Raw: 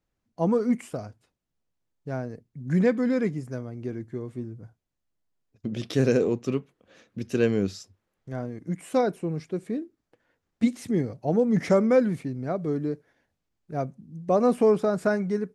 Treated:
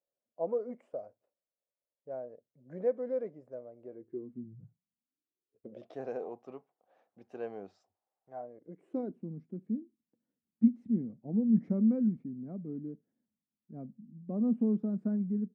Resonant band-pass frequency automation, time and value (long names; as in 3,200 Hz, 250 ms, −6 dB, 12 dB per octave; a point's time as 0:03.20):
resonant band-pass, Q 5.6
0:03.92 570 Hz
0:04.58 140 Hz
0:06.02 760 Hz
0:08.35 760 Hz
0:09.22 220 Hz